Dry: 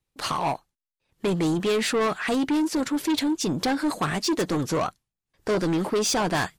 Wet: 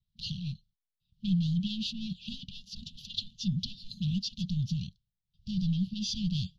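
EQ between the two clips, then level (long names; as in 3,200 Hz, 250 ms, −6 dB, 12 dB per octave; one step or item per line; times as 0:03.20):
linear-phase brick-wall band-stop 220–2,400 Hz
low-pass filter 3,200 Hz 12 dB per octave
phaser with its sweep stopped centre 2,500 Hz, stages 6
+2.0 dB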